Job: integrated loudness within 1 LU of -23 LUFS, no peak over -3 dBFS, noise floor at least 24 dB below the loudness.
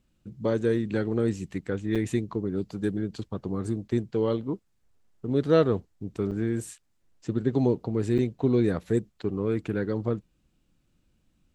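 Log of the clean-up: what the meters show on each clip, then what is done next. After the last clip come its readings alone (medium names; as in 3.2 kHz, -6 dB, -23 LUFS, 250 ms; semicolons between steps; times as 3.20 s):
dropouts 3; longest dropout 6.6 ms; loudness -28.0 LUFS; peak level -8.5 dBFS; loudness target -23.0 LUFS
-> interpolate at 1.95/6.31/8.18 s, 6.6 ms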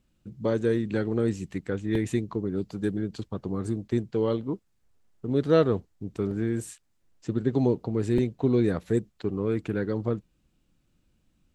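dropouts 0; loudness -28.0 LUFS; peak level -8.5 dBFS; loudness target -23.0 LUFS
-> trim +5 dB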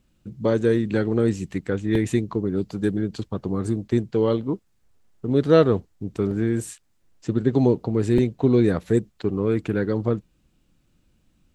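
loudness -23.0 LUFS; peak level -3.5 dBFS; noise floor -65 dBFS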